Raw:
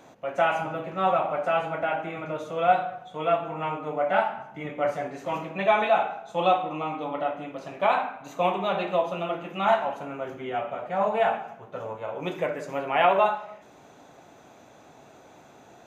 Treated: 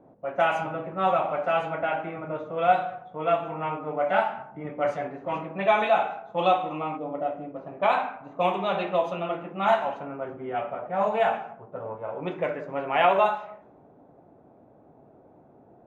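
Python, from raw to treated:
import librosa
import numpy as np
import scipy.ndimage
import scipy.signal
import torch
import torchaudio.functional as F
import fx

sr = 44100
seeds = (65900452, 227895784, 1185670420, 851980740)

y = fx.spec_box(x, sr, start_s=6.97, length_s=0.58, low_hz=740.0, high_hz=4700.0, gain_db=-8)
y = fx.env_lowpass(y, sr, base_hz=540.0, full_db=-19.5)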